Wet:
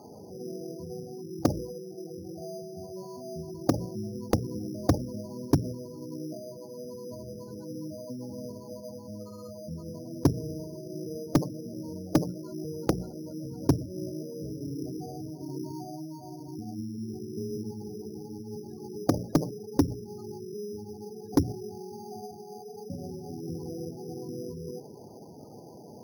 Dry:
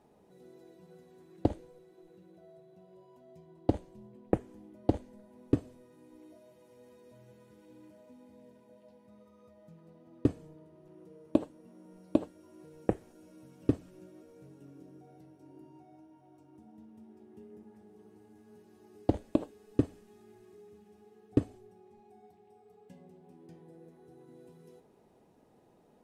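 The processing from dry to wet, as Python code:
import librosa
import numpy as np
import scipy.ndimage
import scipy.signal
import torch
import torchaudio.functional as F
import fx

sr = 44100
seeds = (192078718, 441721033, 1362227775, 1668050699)

p1 = fx.octave_divider(x, sr, octaves=1, level_db=-2.0)
p2 = scipy.signal.sosfilt(scipy.signal.butter(2, 100.0, 'highpass', fs=sr, output='sos'), p1)
p3 = fx.spec_gate(p2, sr, threshold_db=-15, keep='strong')
p4 = fx.hum_notches(p3, sr, base_hz=60, count=3)
p5 = fx.over_compress(p4, sr, threshold_db=-50.0, ratio=-1.0)
p6 = p4 + (p5 * 10.0 ** (-1.0 / 20.0))
p7 = np.repeat(p6[::8], 8)[:len(p6)]
p8 = np.clip(p7, -10.0 ** (-20.0 / 20.0), 10.0 ** (-20.0 / 20.0))
y = p8 * 10.0 ** (6.5 / 20.0)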